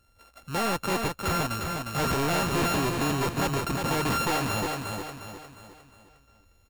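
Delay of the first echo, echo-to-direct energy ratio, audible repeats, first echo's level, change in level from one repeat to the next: 0.356 s, -3.5 dB, 5, -4.5 dB, -7.5 dB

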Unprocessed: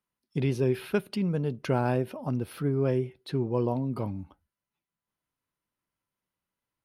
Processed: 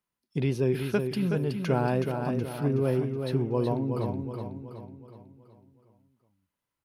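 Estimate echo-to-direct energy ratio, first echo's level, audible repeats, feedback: -5.0 dB, -6.0 dB, 5, 47%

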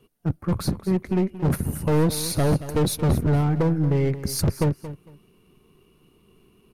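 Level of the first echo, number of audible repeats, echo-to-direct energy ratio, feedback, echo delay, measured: -14.0 dB, 2, -14.0 dB, 20%, 0.227 s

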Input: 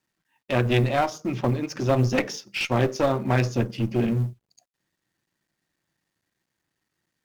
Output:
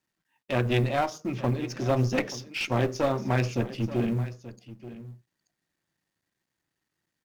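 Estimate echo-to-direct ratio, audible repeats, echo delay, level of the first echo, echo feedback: -15.5 dB, 1, 0.882 s, -15.5 dB, no steady repeat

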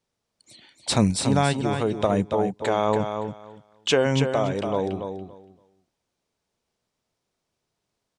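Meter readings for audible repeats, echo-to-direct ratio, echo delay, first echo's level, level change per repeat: 2, -7.0 dB, 0.284 s, -7.0 dB, -15.0 dB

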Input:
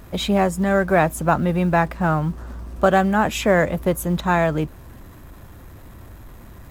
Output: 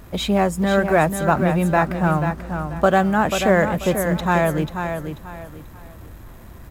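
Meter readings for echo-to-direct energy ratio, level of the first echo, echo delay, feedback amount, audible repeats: -7.0 dB, -7.5 dB, 0.488 s, 29%, 3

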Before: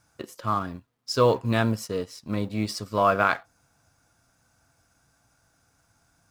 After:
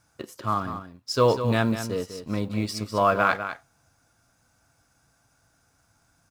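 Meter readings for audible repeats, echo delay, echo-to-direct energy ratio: 1, 0.199 s, -10.0 dB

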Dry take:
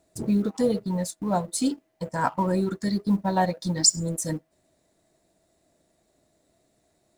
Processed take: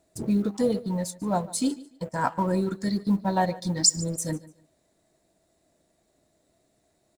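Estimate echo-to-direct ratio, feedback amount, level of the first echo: -19.5 dB, 24%, -19.5 dB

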